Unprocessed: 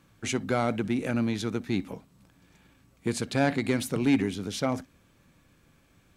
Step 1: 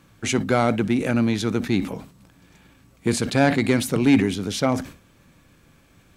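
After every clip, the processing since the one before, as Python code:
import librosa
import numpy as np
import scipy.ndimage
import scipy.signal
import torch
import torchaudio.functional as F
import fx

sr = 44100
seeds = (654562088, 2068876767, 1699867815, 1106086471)

y = fx.sustainer(x, sr, db_per_s=130.0)
y = y * librosa.db_to_amplitude(6.5)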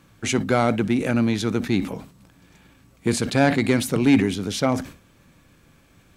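y = x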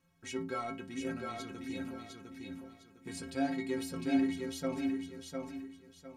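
y = fx.stiff_resonator(x, sr, f0_hz=80.0, decay_s=0.54, stiffness=0.03)
y = fx.echo_feedback(y, sr, ms=705, feedback_pct=30, wet_db=-4.0)
y = y * librosa.db_to_amplitude(-6.5)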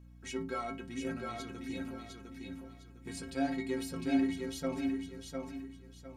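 y = fx.add_hum(x, sr, base_hz=60, snr_db=17)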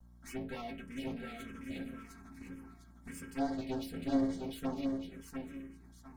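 y = fx.lower_of_two(x, sr, delay_ms=4.4)
y = fx.env_phaser(y, sr, low_hz=380.0, high_hz=2600.0, full_db=-31.0)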